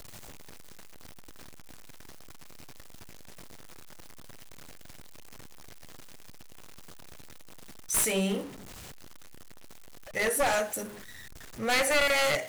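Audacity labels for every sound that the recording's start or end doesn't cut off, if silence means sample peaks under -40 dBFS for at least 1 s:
7.900000	8.480000	sound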